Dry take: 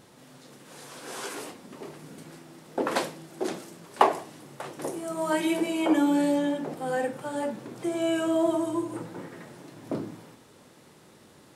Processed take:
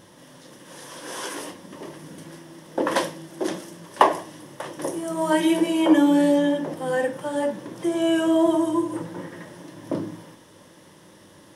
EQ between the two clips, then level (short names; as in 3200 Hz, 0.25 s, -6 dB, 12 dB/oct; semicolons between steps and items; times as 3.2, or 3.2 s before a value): ripple EQ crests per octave 1.2, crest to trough 7 dB; +3.5 dB